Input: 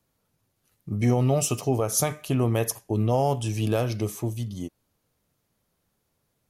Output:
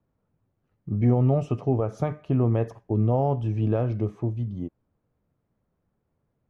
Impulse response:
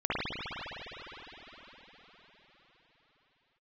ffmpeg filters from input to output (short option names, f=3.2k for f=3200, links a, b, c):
-af "lowpass=1.6k,lowshelf=f=490:g=6.5,volume=-4dB"